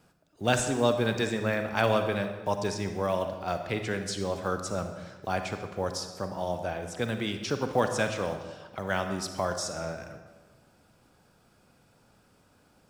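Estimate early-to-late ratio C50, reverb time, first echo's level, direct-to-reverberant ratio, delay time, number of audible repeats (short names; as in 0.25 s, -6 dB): 7.5 dB, 1.4 s, none, 6.5 dB, none, none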